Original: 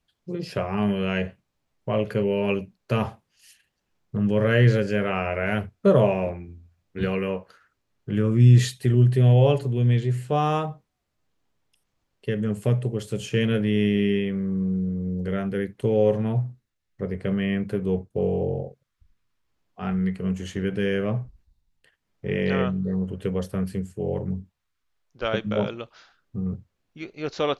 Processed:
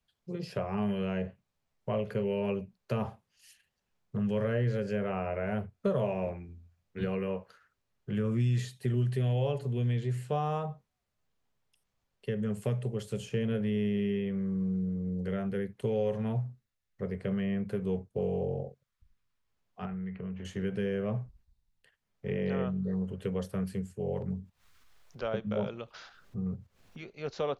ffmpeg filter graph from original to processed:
-filter_complex "[0:a]asettb=1/sr,asplit=3[a][b][c];[a]atrim=end=19.854[d];[b]atrim=start=19.85:end=20.45,asetpts=PTS-STARTPTS,afade=t=in:d=0.004:c=qsin,afade=t=out:st=0.596:d=0.004:c=qsin,lowpass=f=2.8k:w=0.5412,lowpass=f=2.8k:w=1.3066,acompressor=threshold=-29dB:ratio=6:attack=3.2:release=140:knee=1:detection=peak[e];[c]atrim=start=20.446[f];[d][e]acrossfade=d=0.004:c1=hsin:c2=qsin[g];[g][f]acrossfade=d=0.004:c1=qsin:c2=hsin,asettb=1/sr,asplit=3[h][i][j];[h]atrim=end=24.224[k];[i]atrim=start=24.22:end=27.09,asetpts=PTS-STARTPTS,afade=t=in:d=0.004:c=qsin,afade=t=out:st=2.866:d=0.004:c=qsin,agate=range=-9dB:threshold=-57dB:ratio=16:release=100:detection=peak,acompressor=mode=upward:threshold=-31dB:ratio=2.5:attack=3.2:release=140:knee=2.83:detection=peak[l];[j]atrim=start=27.086[m];[k][l]acrossfade=d=0.004:c1=hsin:c2=qsin[n];[n][m]acrossfade=d=0.004:c1=qsin:c2=hsin,equalizer=f=310:t=o:w=0.21:g=-11.5,acrossover=split=94|1100[o][p][q];[o]acompressor=threshold=-44dB:ratio=4[r];[p]acompressor=threshold=-22dB:ratio=4[s];[q]acompressor=threshold=-41dB:ratio=4[t];[r][s][t]amix=inputs=3:normalize=0,volume=-5dB"

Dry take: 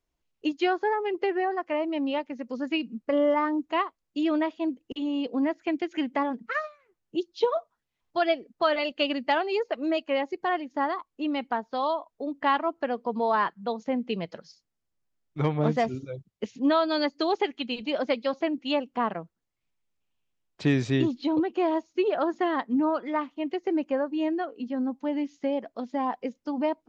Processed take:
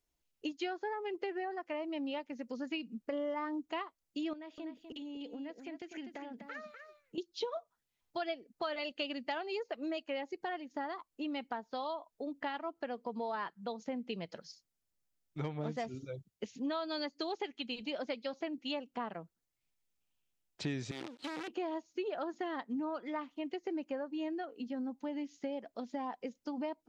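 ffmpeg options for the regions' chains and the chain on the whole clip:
-filter_complex "[0:a]asettb=1/sr,asplit=3[a][b][c];[a]atrim=end=4.334[d];[b]atrim=start=4.33:end=7.18,asetpts=PTS-STARTPTS,afade=t=in:d=0.004:c=qsin,afade=t=out:st=2.846:d=0.004:c=qsin,equalizer=f=1.1k:w=4.2:g=-6.5,acompressor=threshold=-39dB:ratio=4:attack=3.2:release=140:knee=1:detection=peak,aecho=1:1:248:0.398,atrim=end_sample=125685[e];[c]atrim=start=7.176[f];[d][e]acrossfade=d=0.004:c1=hsin:c2=qsin[g];[g][f]acrossfade=d=0.004:c1=qsin:c2=hsin,asettb=1/sr,asplit=3[h][i][j];[h]atrim=end=20.914[k];[i]atrim=start=20.91:end=21.48,asetpts=PTS-STARTPTS,afade=t=in:d=0.004:c=qsin,afade=t=out:st=0.566:d=0.004:c=qsin,acompressor=threshold=-31dB:ratio=8:attack=3.2:release=140:knee=1:detection=peak,acrusher=bits=6:dc=4:mix=0:aa=0.000001,highpass=230,lowpass=3.3k[l];[j]atrim=start=21.476[m];[k][l]acrossfade=d=0.004:c1=hsin:c2=qsin[n];[n][m]acrossfade=d=0.004:c1=qsin:c2=hsin,highshelf=f=4.5k:g=9,acompressor=threshold=-33dB:ratio=2.5,bandreject=f=1.1k:w=15,volume=-5dB"

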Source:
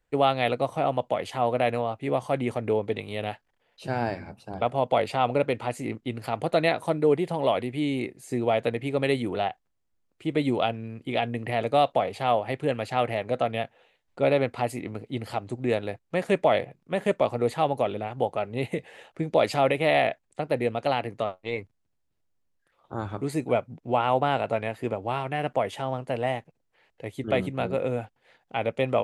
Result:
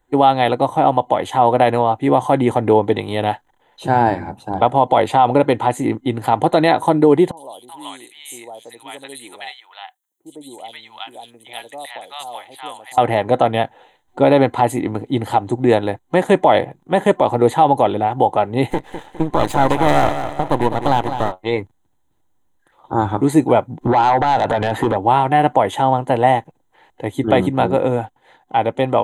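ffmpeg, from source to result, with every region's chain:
-filter_complex "[0:a]asettb=1/sr,asplit=3[a][b][c];[a]atrim=end=7.314[d];[b]atrim=start=7.31:end=12.98,asetpts=PTS-STARTPTS,afade=t=in:d=0.004:c=qsin,afade=t=out:st=5.666:d=0.004:c=qsin,aderivative,acrossover=split=800|4300[e][f][g];[g]adelay=60[h];[f]adelay=380[i];[e][i][h]amix=inputs=3:normalize=0,atrim=end_sample=250047[j];[c]atrim=start=12.976[k];[d][j]acrossfade=d=0.004:c1=hsin:c2=qsin[l];[l][k]acrossfade=d=0.004:c1=qsin:c2=hsin,asettb=1/sr,asplit=3[m][n][o];[m]atrim=end=18.704[p];[n]atrim=start=18.7:end=21.32,asetpts=PTS-STARTPTS,afade=t=in:d=0.004:c=qsin,afade=t=out:st=2.616:d=0.004:c=qsin,highpass=f=81:w=0.5412,highpass=f=81:w=1.3066,aecho=1:1:205|410|615|820:0.316|0.123|0.0481|0.0188,atrim=end_sample=115542,aeval=exprs='max(val(0),0)':c=same[q];[o]atrim=start=21.316[r];[p][q]acrossfade=d=0.004:c1=hsin:c2=qsin[s];[s][r]acrossfade=d=0.004:c1=qsin:c2=hsin,asettb=1/sr,asplit=3[t][u][v];[t]atrim=end=23.814[w];[u]atrim=start=23.81:end=24.97,asetpts=PTS-STARTPTS,afade=t=in:d=0.004:c=qsin,afade=t=out:st=1.156:d=0.004:c=qsin,highshelf=f=6.9k:g=-8.5,acompressor=threshold=-34dB:ratio=6:attack=3.2:release=140:knee=1:detection=peak,aeval=exprs='0.0668*sin(PI/2*2.82*val(0)/0.0668)':c=same[x];[v]atrim=start=24.966[y];[w][x]acrossfade=d=0.004:c1=hsin:c2=qsin[z];[z][y]acrossfade=d=0.004:c1=qsin:c2=hsin,superequalizer=6b=1.78:9b=2.51:12b=0.501:14b=0.282,dynaudnorm=f=340:g=9:m=3.5dB,alimiter=level_in=9dB:limit=-1dB:release=50:level=0:latency=1,volume=-1dB"

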